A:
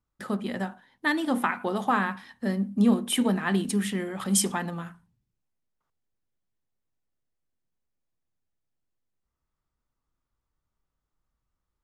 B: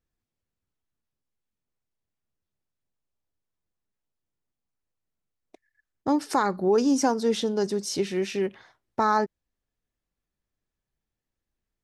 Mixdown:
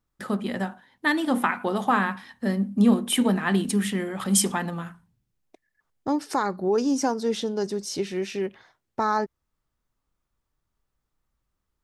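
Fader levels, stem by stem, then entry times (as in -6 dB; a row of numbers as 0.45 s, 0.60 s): +2.5 dB, -1.5 dB; 0.00 s, 0.00 s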